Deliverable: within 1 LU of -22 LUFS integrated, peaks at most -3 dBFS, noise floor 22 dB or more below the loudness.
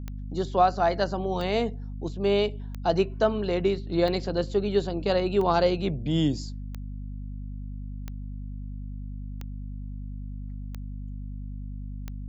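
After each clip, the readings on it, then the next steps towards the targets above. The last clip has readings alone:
clicks 10; hum 50 Hz; harmonics up to 250 Hz; hum level -33 dBFS; loudness -26.0 LUFS; peak -8.0 dBFS; loudness target -22.0 LUFS
-> de-click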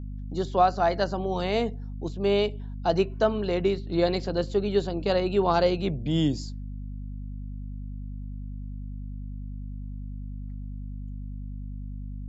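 clicks 0; hum 50 Hz; harmonics up to 250 Hz; hum level -33 dBFS
-> de-hum 50 Hz, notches 5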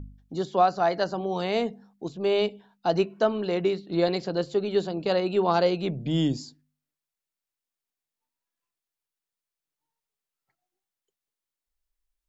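hum none; loudness -26.0 LUFS; peak -8.5 dBFS; loudness target -22.0 LUFS
-> gain +4 dB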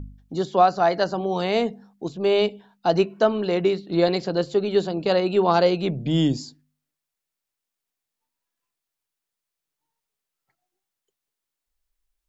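loudness -22.0 LUFS; peak -4.5 dBFS; noise floor -85 dBFS

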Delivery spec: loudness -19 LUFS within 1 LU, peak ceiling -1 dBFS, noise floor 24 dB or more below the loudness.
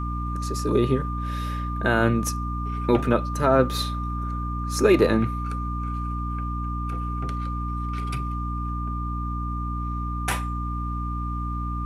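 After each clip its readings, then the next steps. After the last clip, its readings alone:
hum 60 Hz; harmonics up to 300 Hz; hum level -27 dBFS; steady tone 1200 Hz; tone level -32 dBFS; loudness -26.0 LUFS; peak -5.5 dBFS; loudness target -19.0 LUFS
-> de-hum 60 Hz, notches 5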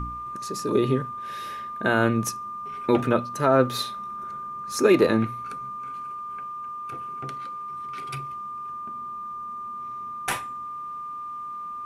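hum none; steady tone 1200 Hz; tone level -32 dBFS
-> notch 1200 Hz, Q 30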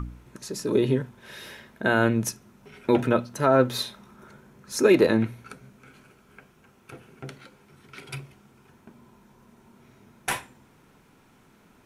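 steady tone none; loudness -24.0 LUFS; peak -6.5 dBFS; loudness target -19.0 LUFS
-> gain +5 dB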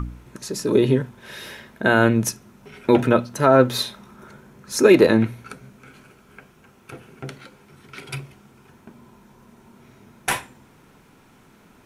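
loudness -19.0 LUFS; peak -1.5 dBFS; noise floor -54 dBFS

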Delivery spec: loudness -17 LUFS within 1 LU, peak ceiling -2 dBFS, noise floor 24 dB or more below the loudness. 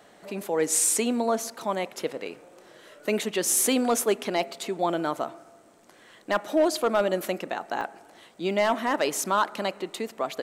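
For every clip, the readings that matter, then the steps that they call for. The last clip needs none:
clipped 0.3%; flat tops at -14.5 dBFS; dropouts 1; longest dropout 2.1 ms; loudness -26.5 LUFS; peak -14.5 dBFS; loudness target -17.0 LUFS
-> clip repair -14.5 dBFS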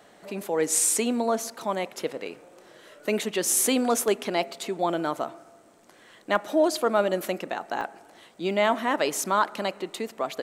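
clipped 0.0%; dropouts 1; longest dropout 2.1 ms
-> interpolate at 7.81, 2.1 ms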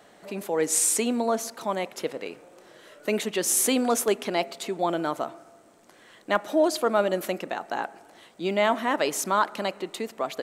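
dropouts 0; loudness -26.0 LUFS; peak -8.0 dBFS; loudness target -17.0 LUFS
-> gain +9 dB; limiter -2 dBFS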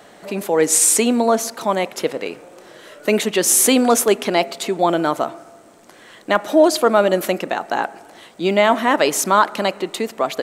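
loudness -17.5 LUFS; peak -2.0 dBFS; noise floor -46 dBFS

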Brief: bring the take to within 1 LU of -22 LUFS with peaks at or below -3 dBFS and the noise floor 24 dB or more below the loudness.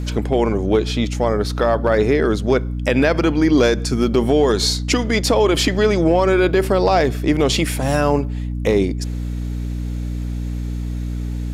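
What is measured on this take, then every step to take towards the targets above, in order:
hum 60 Hz; harmonics up to 300 Hz; hum level -21 dBFS; loudness -18.5 LUFS; peak -5.0 dBFS; loudness target -22.0 LUFS
-> de-hum 60 Hz, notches 5; gain -3.5 dB

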